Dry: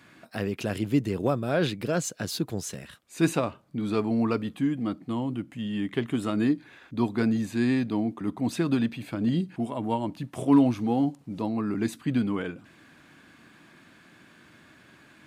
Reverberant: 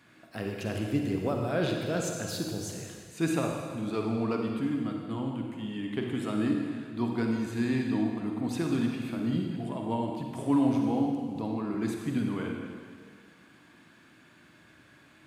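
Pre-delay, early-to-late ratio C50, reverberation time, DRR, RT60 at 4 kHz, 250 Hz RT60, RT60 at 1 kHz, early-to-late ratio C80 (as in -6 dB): 39 ms, 1.5 dB, 1.8 s, 1.0 dB, 1.7 s, 1.8 s, 1.8 s, 3.5 dB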